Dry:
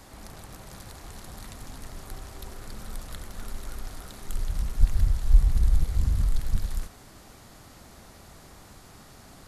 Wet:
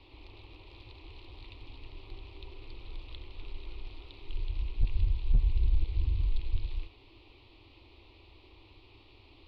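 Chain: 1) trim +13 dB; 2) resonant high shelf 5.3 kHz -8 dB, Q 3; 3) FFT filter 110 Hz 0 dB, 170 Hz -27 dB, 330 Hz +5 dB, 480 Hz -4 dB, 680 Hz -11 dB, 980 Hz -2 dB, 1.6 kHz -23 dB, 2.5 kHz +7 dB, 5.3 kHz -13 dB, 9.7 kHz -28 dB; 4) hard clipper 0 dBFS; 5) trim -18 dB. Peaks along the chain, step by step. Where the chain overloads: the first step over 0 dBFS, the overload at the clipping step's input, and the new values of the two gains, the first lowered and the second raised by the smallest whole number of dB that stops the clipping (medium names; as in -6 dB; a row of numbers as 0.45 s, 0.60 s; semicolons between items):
+7.5 dBFS, +7.5 dBFS, +7.0 dBFS, 0.0 dBFS, -18.0 dBFS; step 1, 7.0 dB; step 1 +6 dB, step 5 -11 dB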